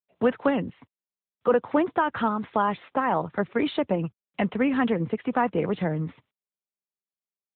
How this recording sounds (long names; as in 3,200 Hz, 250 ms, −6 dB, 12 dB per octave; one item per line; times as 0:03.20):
a quantiser's noise floor 12 bits, dither none
AMR narrowband